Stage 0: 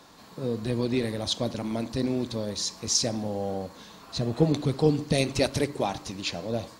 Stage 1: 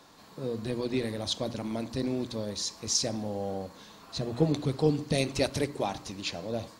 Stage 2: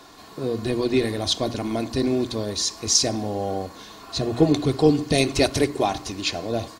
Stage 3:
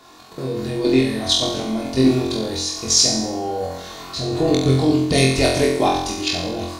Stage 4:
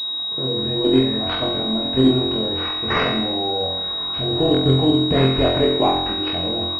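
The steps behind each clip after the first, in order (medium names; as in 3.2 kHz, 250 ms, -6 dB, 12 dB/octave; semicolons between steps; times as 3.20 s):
hum notches 60/120/180/240 Hz; trim -3 dB
comb 2.8 ms, depth 43%; trim +8 dB
level held to a coarse grid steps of 11 dB; flutter echo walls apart 3.9 m, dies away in 0.74 s; trim +4.5 dB
class-D stage that switches slowly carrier 3.8 kHz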